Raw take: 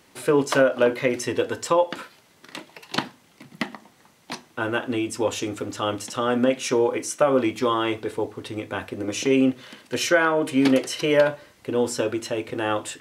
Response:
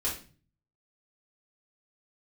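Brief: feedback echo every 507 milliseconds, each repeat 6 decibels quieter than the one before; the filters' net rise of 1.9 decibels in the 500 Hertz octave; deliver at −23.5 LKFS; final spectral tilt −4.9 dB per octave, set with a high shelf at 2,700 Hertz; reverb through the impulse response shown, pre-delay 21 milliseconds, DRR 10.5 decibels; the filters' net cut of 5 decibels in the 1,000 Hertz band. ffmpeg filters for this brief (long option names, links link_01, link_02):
-filter_complex "[0:a]equalizer=frequency=500:width_type=o:gain=4,equalizer=frequency=1000:width_type=o:gain=-6.5,highshelf=frequency=2700:gain=-7,aecho=1:1:507|1014|1521|2028|2535|3042:0.501|0.251|0.125|0.0626|0.0313|0.0157,asplit=2[link_01][link_02];[1:a]atrim=start_sample=2205,adelay=21[link_03];[link_02][link_03]afir=irnorm=-1:irlink=0,volume=-16dB[link_04];[link_01][link_04]amix=inputs=2:normalize=0,volume=-2dB"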